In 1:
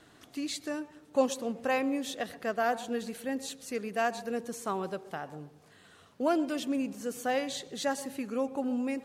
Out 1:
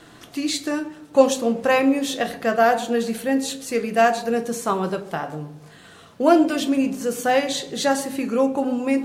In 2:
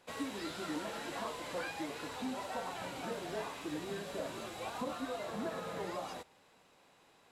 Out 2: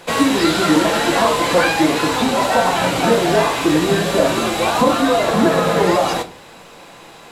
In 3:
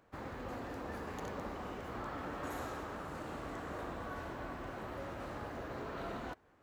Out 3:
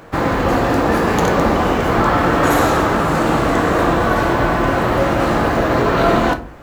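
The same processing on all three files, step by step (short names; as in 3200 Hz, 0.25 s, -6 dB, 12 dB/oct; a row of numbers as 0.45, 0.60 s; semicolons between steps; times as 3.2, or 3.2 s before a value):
shoebox room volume 210 m³, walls furnished, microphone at 0.77 m; normalise peaks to -1.5 dBFS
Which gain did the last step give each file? +10.0, +24.0, +26.5 dB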